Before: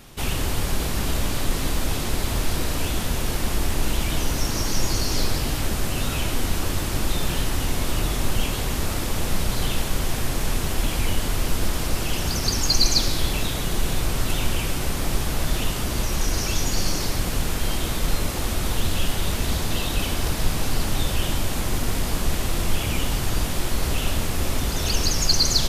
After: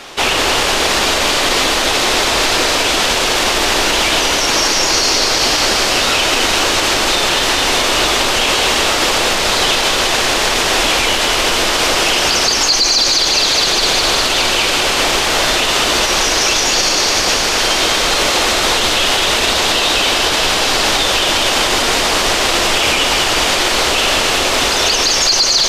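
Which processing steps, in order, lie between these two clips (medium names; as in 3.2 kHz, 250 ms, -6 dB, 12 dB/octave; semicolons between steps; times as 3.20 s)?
three-band isolator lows -22 dB, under 360 Hz, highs -18 dB, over 7 kHz; feedback echo behind a high-pass 206 ms, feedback 76%, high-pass 2.3 kHz, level -4 dB; loudness maximiser +21 dB; trim -3 dB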